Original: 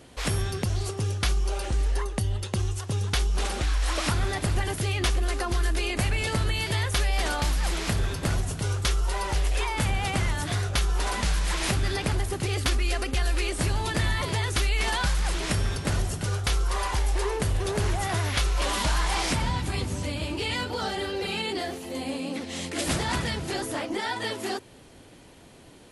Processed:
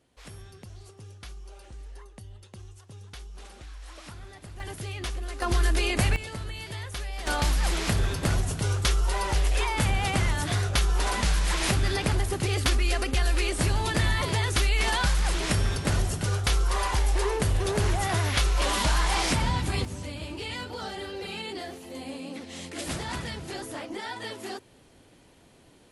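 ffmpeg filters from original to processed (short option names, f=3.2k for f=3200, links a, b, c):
-af "asetnsamples=n=441:p=0,asendcmd='4.6 volume volume -8.5dB;5.42 volume volume 2dB;6.16 volume volume -10dB;7.27 volume volume 1dB;19.85 volume volume -6dB',volume=-18dB"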